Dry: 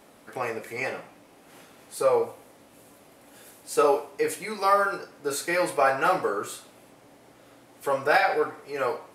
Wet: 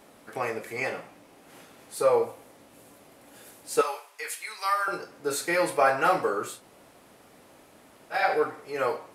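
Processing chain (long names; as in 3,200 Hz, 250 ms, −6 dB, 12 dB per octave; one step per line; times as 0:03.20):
0:03.81–0:04.88: high-pass filter 1,300 Hz 12 dB per octave
0:06.56–0:08.18: fill with room tone, crossfade 0.16 s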